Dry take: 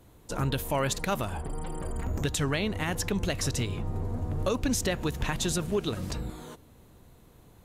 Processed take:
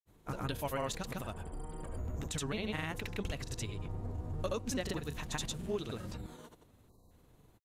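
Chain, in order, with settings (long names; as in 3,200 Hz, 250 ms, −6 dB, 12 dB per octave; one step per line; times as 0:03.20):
granular cloud, pitch spread up and down by 0 semitones
time-frequency box erased 0:06.89–0:07.11, 1,200–3,800 Hz
level −7 dB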